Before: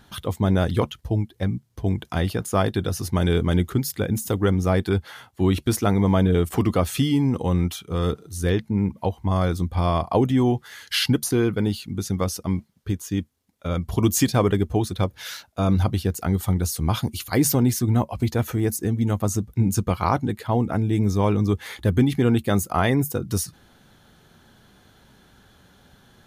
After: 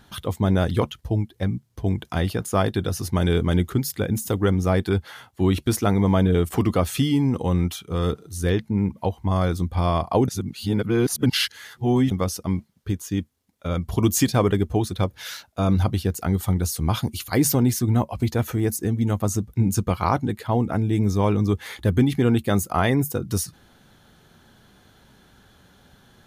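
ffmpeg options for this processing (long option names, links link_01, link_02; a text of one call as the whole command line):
ffmpeg -i in.wav -filter_complex "[0:a]asplit=3[link_01][link_02][link_03];[link_01]atrim=end=10.282[link_04];[link_02]atrim=start=10.278:end=12.112,asetpts=PTS-STARTPTS,areverse[link_05];[link_03]atrim=start=12.108[link_06];[link_04][link_05]acrossfade=duration=0.004:curve1=hsin:curve2=hsin[link_07];[link_07][link_06]acrossfade=duration=0.004:curve1=hsin:curve2=hsin" out.wav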